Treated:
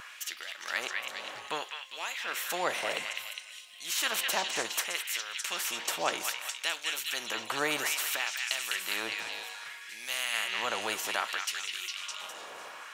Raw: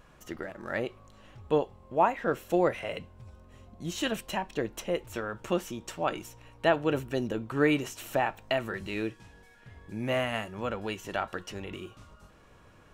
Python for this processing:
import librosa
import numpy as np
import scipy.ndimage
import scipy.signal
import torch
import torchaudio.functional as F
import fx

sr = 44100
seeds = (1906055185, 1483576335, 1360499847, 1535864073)

y = fx.filter_lfo_highpass(x, sr, shape='sine', hz=0.62, low_hz=630.0, high_hz=3400.0, q=1.6)
y = fx.echo_stepped(y, sr, ms=204, hz=2500.0, octaves=0.7, feedback_pct=70, wet_db=-2)
y = fx.spectral_comp(y, sr, ratio=2.0)